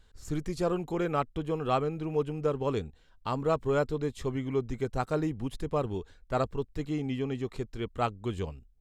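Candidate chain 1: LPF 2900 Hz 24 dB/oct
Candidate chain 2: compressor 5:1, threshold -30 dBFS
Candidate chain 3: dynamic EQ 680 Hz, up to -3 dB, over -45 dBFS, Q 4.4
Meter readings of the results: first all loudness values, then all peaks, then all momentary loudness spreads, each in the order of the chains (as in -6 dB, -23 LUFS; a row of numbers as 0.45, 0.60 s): -32.0, -36.5, -32.5 LUFS; -15.5, -20.0, -15.5 dBFS; 8, 5, 7 LU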